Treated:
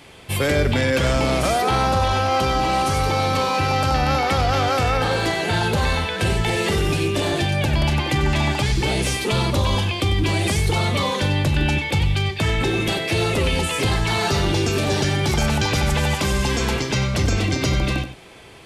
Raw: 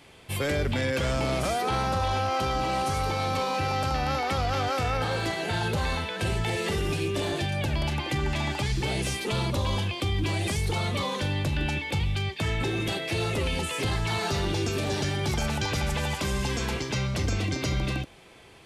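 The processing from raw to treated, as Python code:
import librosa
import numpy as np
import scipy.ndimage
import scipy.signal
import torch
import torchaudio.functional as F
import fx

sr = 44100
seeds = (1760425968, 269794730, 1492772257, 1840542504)

y = x + 10.0 ** (-12.5 / 20.0) * np.pad(x, (int(95 * sr / 1000.0), 0))[:len(x)]
y = y * librosa.db_to_amplitude(7.5)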